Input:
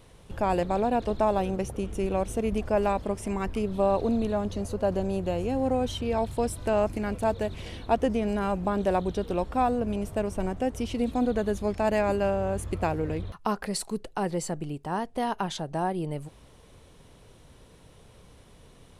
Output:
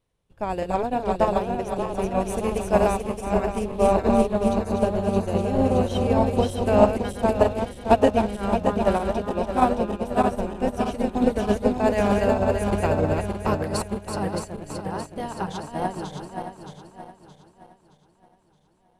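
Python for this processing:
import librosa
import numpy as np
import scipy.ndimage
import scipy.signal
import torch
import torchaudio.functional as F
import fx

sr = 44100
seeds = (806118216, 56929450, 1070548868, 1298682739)

y = fx.reverse_delay_fb(x, sr, ms=310, feedback_pct=82, wet_db=-3)
y = fx.high_shelf(y, sr, hz=4700.0, db=7.0, at=(2.2, 3.21))
y = fx.upward_expand(y, sr, threshold_db=-38.0, expansion=2.5)
y = y * 10.0 ** (7.5 / 20.0)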